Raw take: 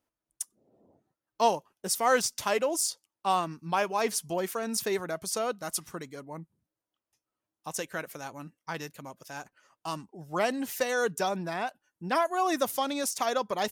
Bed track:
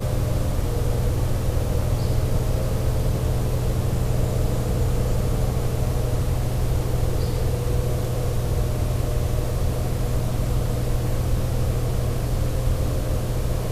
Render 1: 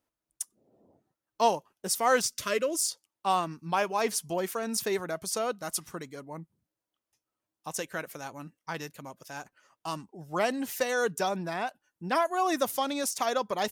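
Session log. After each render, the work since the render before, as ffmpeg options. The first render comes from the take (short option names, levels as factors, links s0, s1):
-filter_complex "[0:a]asettb=1/sr,asplit=3[s0][s1][s2];[s0]atrim=end=2.234[s3];[s1]atrim=start=2.23:end=2.91,asetpts=PTS-STARTPTS,afade=t=in:d=0.004:c=qsin,afade=t=out:st=0.676:d=0.004:c=qsin,asuperstop=centerf=820:order=4:qfactor=1.8[s4];[s2]atrim=start=2.906[s5];[s3][s4]acrossfade=d=0.004:c1=hsin:c2=qsin[s6];[s6][s5]acrossfade=d=0.004:c1=qsin:c2=hsin"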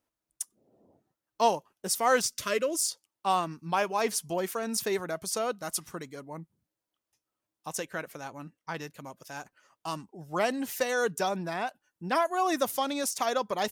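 -filter_complex "[0:a]asettb=1/sr,asplit=3[s0][s1][s2];[s0]atrim=end=7.794[s3];[s1]atrim=start=7.79:end=8.97,asetpts=PTS-STARTPTS,afade=t=in:d=0.004:c=qsin,afade=t=out:st=1.176:d=0.004:c=qsin,highshelf=f=5300:g=-6[s4];[s2]atrim=start=8.966[s5];[s3][s4]acrossfade=d=0.004:c1=hsin:c2=qsin[s6];[s6][s5]acrossfade=d=0.004:c1=qsin:c2=hsin"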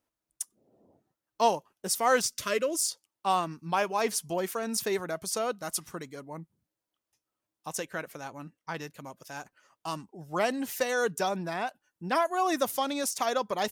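-af anull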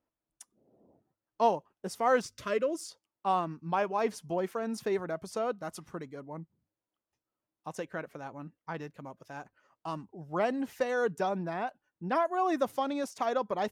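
-af "lowpass=f=1200:p=1,bandreject=f=50:t=h:w=6,bandreject=f=100:t=h:w=6"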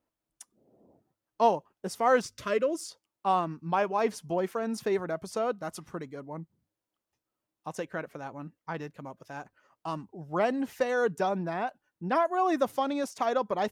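-af "volume=1.33"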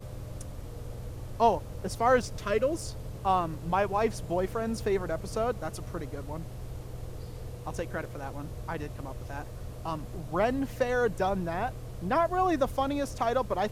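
-filter_complex "[1:a]volume=0.133[s0];[0:a][s0]amix=inputs=2:normalize=0"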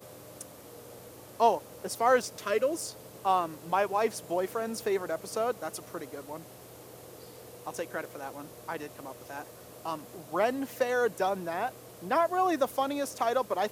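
-af "highpass=280,highshelf=f=9400:g=10.5"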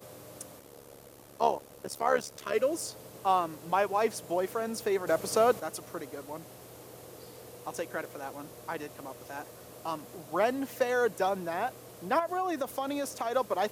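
-filter_complex "[0:a]asplit=3[s0][s1][s2];[s0]afade=t=out:st=0.58:d=0.02[s3];[s1]tremolo=f=71:d=0.824,afade=t=in:st=0.58:d=0.02,afade=t=out:st=2.53:d=0.02[s4];[s2]afade=t=in:st=2.53:d=0.02[s5];[s3][s4][s5]amix=inputs=3:normalize=0,asettb=1/sr,asplit=3[s6][s7][s8];[s6]atrim=end=5.074[s9];[s7]atrim=start=5.07:end=5.6,asetpts=PTS-STARTPTS,afade=t=in:d=0.004:c=qsin,afade=t=out:st=0.526:d=0.004:c=qsin,acontrast=54[s10];[s8]atrim=start=5.596[s11];[s9][s10]acrossfade=d=0.004:c1=hsin:c2=qsin[s12];[s12][s11]acrossfade=d=0.004:c1=qsin:c2=hsin,asettb=1/sr,asplit=3[s13][s14][s15];[s13]atrim=end=12.194[s16];[s14]atrim=start=12.19:end=13.34,asetpts=PTS-STARTPTS,afade=t=in:d=0.004:c=qsin,afade=t=out:st=1.146:d=0.004:c=qsin,acompressor=threshold=0.0398:ratio=4:attack=3.2:release=140:knee=1:detection=peak[s17];[s15]atrim=start=13.336[s18];[s16][s17]acrossfade=d=0.004:c1=hsin:c2=qsin[s19];[s19][s18]acrossfade=d=0.004:c1=qsin:c2=hsin"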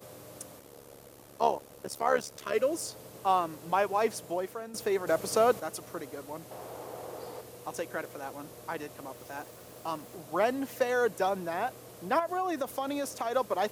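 -filter_complex "[0:a]asettb=1/sr,asplit=3[s0][s1][s2];[s0]atrim=end=6.514[s3];[s1]atrim=start=6.51:end=7.41,asetpts=PTS-STARTPTS,afade=t=in:d=0.004:c=qsin,afade=t=out:st=0.896:d=0.004:c=qsin,equalizer=f=780:w=0.71:g=11.5[s4];[s2]atrim=start=7.406[s5];[s3][s4]acrossfade=d=0.004:c1=hsin:c2=qsin[s6];[s6][s5]acrossfade=d=0.004:c1=qsin:c2=hsin,asettb=1/sr,asplit=3[s7][s8][s9];[s7]atrim=end=9.154[s10];[s8]atrim=start=9.15:end=10.15,asetpts=PTS-STARTPTS,afade=t=in:d=0.004:c=qsin,afade=t=out:st=0.996:d=0.004:c=qsin,aeval=exprs='val(0)*gte(abs(val(0)),0.00237)':c=same[s11];[s9]atrim=start=10.146[s12];[s10][s11]acrossfade=d=0.004:c1=hsin:c2=qsin[s13];[s13][s12]acrossfade=d=0.004:c1=qsin:c2=hsin,asplit=2[s14][s15];[s14]atrim=end=4.74,asetpts=PTS-STARTPTS,afade=t=out:st=4.16:d=0.58:silence=0.266073[s16];[s15]atrim=start=4.74,asetpts=PTS-STARTPTS,afade=t=in:d=0.004:c=hsin:silence=0.266073[s17];[s16][s17]concat=n=2:v=0:a=1"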